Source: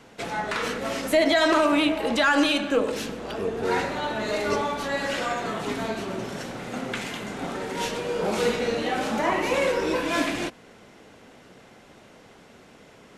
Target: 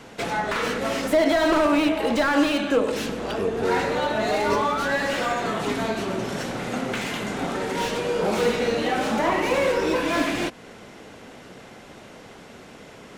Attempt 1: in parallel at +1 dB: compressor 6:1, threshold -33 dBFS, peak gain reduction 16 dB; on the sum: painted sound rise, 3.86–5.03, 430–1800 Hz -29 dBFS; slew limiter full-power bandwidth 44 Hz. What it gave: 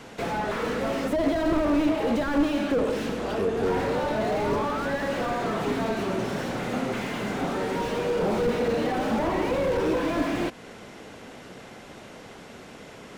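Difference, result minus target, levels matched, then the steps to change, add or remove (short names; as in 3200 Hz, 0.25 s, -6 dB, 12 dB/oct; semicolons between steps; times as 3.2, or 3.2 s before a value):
slew limiter: distortion +10 dB
change: slew limiter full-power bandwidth 134 Hz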